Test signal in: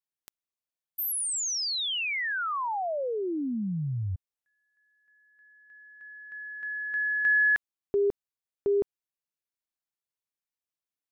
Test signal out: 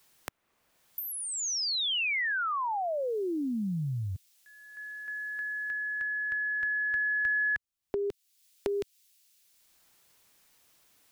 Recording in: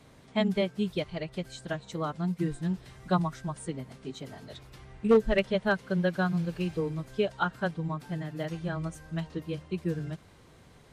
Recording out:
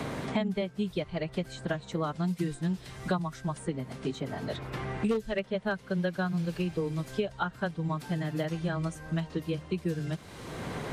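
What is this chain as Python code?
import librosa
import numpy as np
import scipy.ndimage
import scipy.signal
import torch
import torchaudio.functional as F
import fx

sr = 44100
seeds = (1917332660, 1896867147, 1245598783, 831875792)

y = fx.band_squash(x, sr, depth_pct=100)
y = F.gain(torch.from_numpy(y), -1.5).numpy()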